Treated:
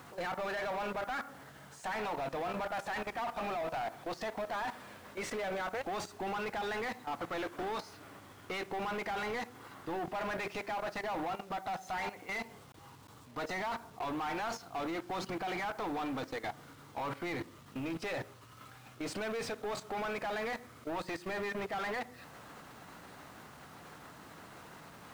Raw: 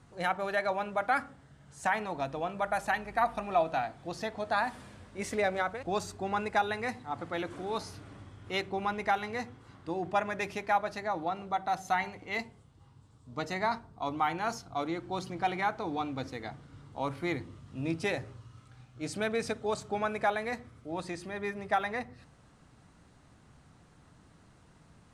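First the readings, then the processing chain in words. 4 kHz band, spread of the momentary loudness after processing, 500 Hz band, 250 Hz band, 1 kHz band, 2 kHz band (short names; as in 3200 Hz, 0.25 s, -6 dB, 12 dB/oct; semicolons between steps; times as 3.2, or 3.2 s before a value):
-2.5 dB, 15 LU, -4.0 dB, -3.5 dB, -6.0 dB, -4.5 dB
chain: level quantiser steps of 21 dB; overdrive pedal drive 25 dB, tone 2300 Hz, clips at -29 dBFS; bit-crush 10-bit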